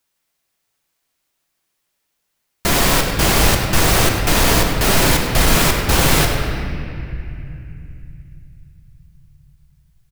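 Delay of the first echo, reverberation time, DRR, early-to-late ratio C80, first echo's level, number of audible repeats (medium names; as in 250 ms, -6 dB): 99 ms, 2.7 s, 1.5 dB, 3.5 dB, -11.5 dB, 1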